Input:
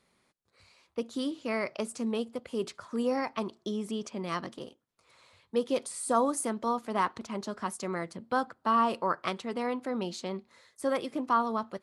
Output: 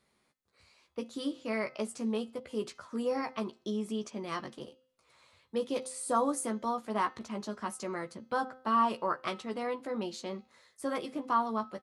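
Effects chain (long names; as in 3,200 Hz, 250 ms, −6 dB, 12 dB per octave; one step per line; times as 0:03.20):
double-tracking delay 14 ms −6 dB
hum removal 258.2 Hz, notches 26
level −3.5 dB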